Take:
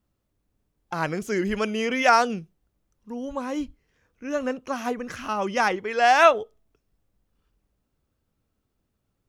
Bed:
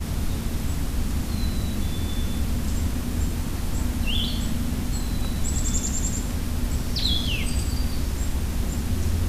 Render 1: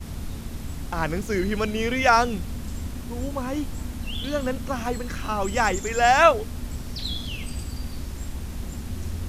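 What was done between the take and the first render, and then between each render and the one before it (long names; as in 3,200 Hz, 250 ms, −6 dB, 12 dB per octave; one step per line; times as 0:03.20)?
mix in bed −7 dB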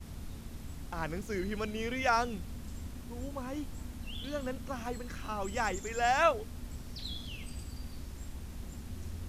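level −10.5 dB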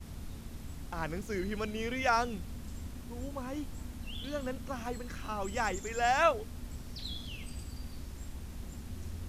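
no processing that can be heard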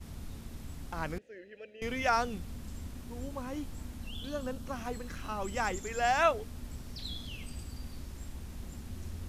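0:01.18–0:01.82: formant filter e
0:04.08–0:04.66: parametric band 2,100 Hz −9.5 dB 0.41 octaves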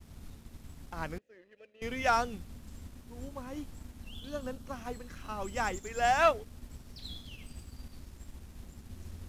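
leveller curve on the samples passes 1
expander for the loud parts 1.5 to 1, over −42 dBFS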